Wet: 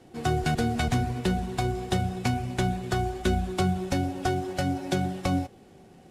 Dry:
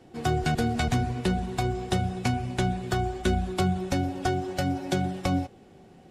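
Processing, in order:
variable-slope delta modulation 64 kbit/s

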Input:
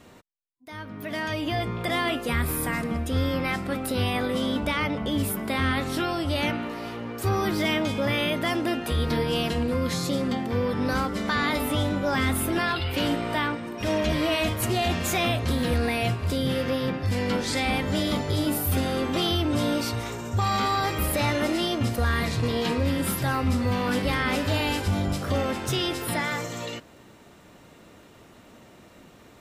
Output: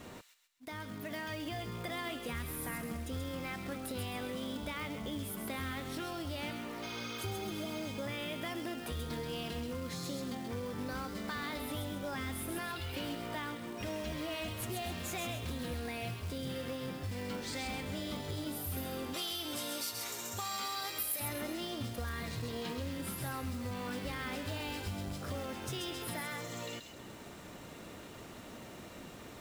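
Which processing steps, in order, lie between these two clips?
0:06.85–0:07.82: healed spectral selection 940–6,500 Hz after
0:19.14–0:21.20: RIAA equalisation recording
downward compressor 3 to 1, threshold −45 dBFS, peak gain reduction 23 dB
floating-point word with a short mantissa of 2 bits
delay with a high-pass on its return 132 ms, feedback 39%, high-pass 2,900 Hz, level −4 dB
level +2 dB

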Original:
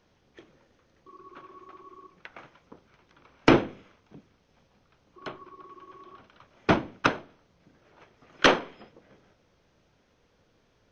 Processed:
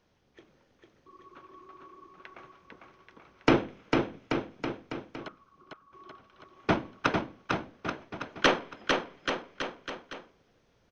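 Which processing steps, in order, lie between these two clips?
0:05.28–0:05.93: resonant band-pass 1,300 Hz, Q 8.4
bouncing-ball delay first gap 450 ms, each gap 0.85×, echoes 5
level −4 dB

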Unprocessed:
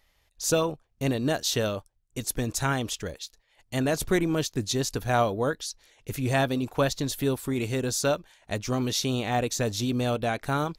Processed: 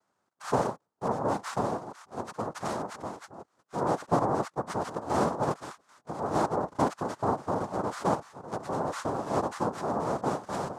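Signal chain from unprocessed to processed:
delay that plays each chunk backwards 580 ms, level −13.5 dB
high-pass filter 190 Hz
cochlear-implant simulation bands 2
high shelf with overshoot 1,800 Hz −12.5 dB, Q 1.5
level −2.5 dB

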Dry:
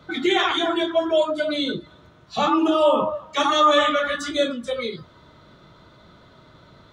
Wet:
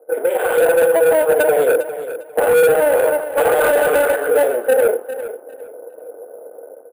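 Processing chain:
sub-harmonics by changed cycles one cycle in 2, muted
low-pass that shuts in the quiet parts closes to 550 Hz, open at −16.5 dBFS
brickwall limiter −12.5 dBFS, peak gain reduction 5 dB
flat-topped bell 620 Hz +11.5 dB 1.1 octaves
downward compressor 4 to 1, threshold −17 dBFS, peak gain reduction 7 dB
elliptic band-pass filter 310–2,800 Hz, stop band 40 dB
automatic gain control gain up to 10 dB
hollow resonant body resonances 480/1,500 Hz, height 18 dB, ringing for 50 ms
soft clipping −6 dBFS, distortion −9 dB
on a send: repeating echo 402 ms, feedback 23%, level −12.5 dB
on the sum: bad sample-rate conversion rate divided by 4×, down filtered, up hold
level −3.5 dB

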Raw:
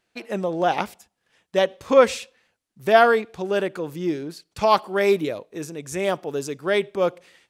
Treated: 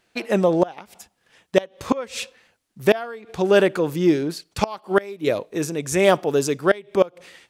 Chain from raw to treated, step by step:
gate with flip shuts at −11 dBFS, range −24 dB
level +7.5 dB

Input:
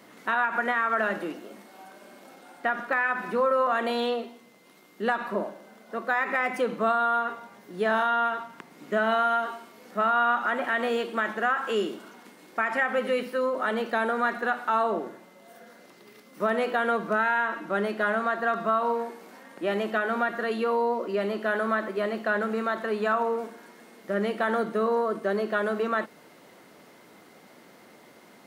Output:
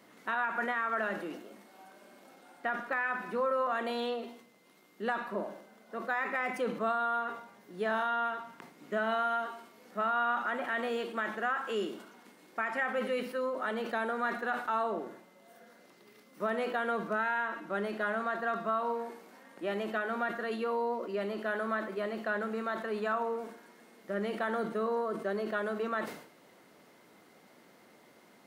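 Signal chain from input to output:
level that may fall only so fast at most 88 dB per second
level −7 dB

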